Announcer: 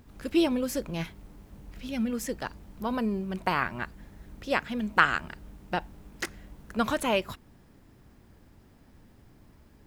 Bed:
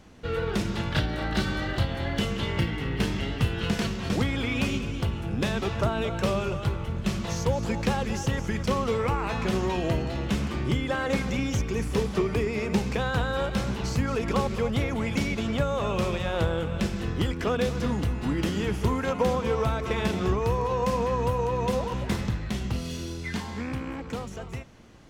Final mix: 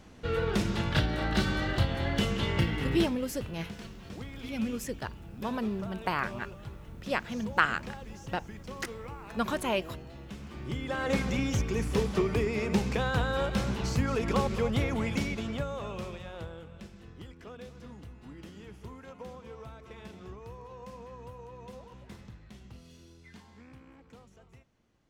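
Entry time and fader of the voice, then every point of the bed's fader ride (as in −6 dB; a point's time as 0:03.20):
2.60 s, −3.5 dB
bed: 0:02.95 −1 dB
0:03.17 −16.5 dB
0:10.37 −16.5 dB
0:11.10 −2 dB
0:14.99 −2 dB
0:16.88 −20 dB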